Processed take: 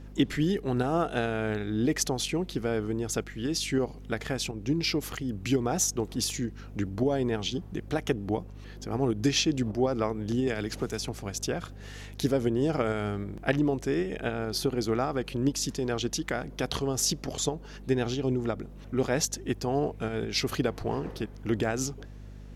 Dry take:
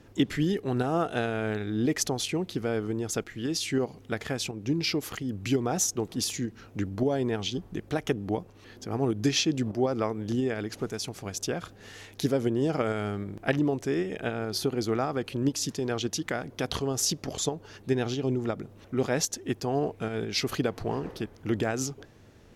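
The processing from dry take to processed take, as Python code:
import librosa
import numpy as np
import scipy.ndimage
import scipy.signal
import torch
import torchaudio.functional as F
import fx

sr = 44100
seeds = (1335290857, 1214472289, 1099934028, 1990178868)

y = fx.add_hum(x, sr, base_hz=50, snr_db=15)
y = fx.band_squash(y, sr, depth_pct=70, at=(10.47, 11.15))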